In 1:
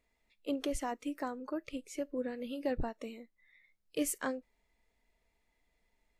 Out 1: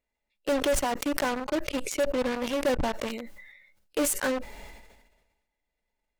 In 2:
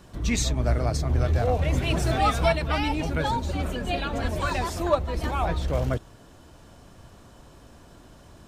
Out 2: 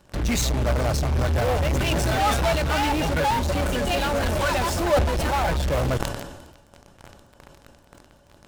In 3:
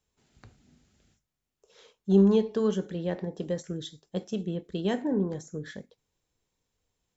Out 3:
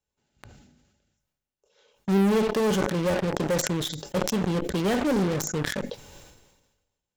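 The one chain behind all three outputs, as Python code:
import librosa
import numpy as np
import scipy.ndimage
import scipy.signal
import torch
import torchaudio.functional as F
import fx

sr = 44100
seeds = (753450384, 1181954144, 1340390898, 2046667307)

p1 = fx.small_body(x, sr, hz=(570.0, 840.0, 1500.0, 2800.0), ring_ms=85, db=10)
p2 = fx.fuzz(p1, sr, gain_db=41.0, gate_db=-40.0)
p3 = p1 + (p2 * 10.0 ** (-3.0 / 20.0))
p4 = fx.sustainer(p3, sr, db_per_s=47.0)
y = p4 * 10.0 ** (-8.0 / 20.0)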